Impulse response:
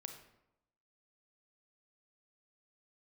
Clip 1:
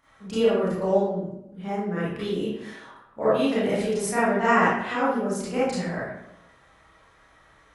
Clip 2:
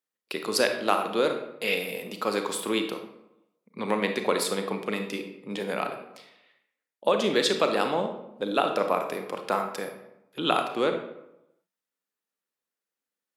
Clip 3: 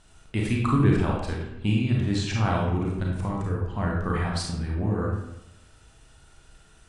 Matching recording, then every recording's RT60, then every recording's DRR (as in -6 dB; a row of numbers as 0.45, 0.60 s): 2; 0.85, 0.85, 0.85 s; -11.5, 5.0, -2.5 dB